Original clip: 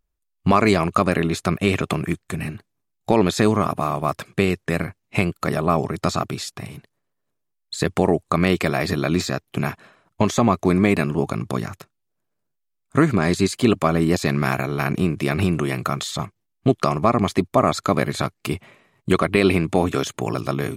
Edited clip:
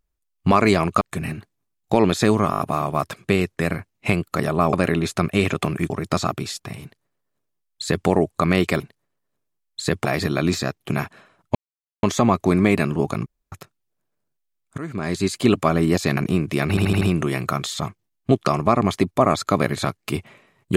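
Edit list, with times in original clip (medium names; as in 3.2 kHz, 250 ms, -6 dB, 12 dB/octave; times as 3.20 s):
1.01–2.18 s: move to 5.82 s
3.68 s: stutter 0.02 s, 5 plays
6.74–7.99 s: copy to 8.72 s
10.22 s: insert silence 0.48 s
11.45–11.71 s: room tone
12.97–13.62 s: fade in, from -20 dB
14.36–14.86 s: delete
15.38 s: stutter 0.08 s, 5 plays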